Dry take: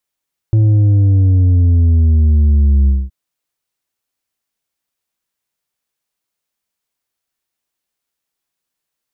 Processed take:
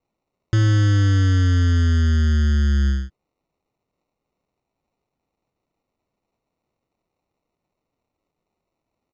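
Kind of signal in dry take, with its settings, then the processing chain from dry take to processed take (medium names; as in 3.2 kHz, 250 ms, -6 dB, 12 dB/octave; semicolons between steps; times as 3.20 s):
sub drop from 110 Hz, over 2.57 s, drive 5.5 dB, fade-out 0.22 s, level -8 dB
bass shelf 140 Hz -9 dB; sample-and-hold 27×; resampled via 16 kHz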